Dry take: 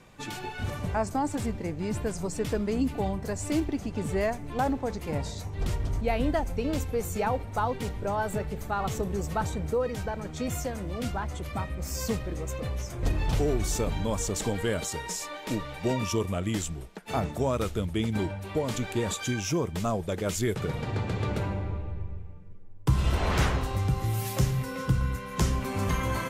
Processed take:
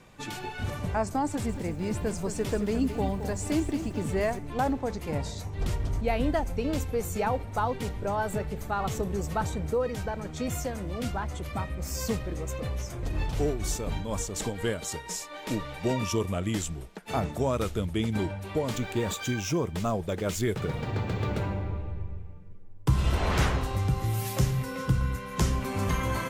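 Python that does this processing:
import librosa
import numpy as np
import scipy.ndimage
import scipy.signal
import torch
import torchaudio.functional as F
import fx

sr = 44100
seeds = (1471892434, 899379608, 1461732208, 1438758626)

y = fx.echo_crushed(x, sr, ms=219, feedback_pct=35, bits=9, wet_db=-9.5, at=(1.27, 4.39))
y = fx.tremolo(y, sr, hz=4.1, depth=0.53, at=(12.96, 15.4))
y = fx.resample_linear(y, sr, factor=2, at=(18.71, 21.78))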